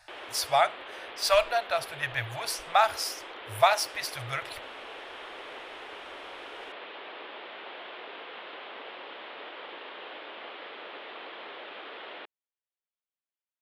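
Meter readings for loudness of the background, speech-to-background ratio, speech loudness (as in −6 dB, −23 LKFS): −42.0 LKFS, 14.5 dB, −27.5 LKFS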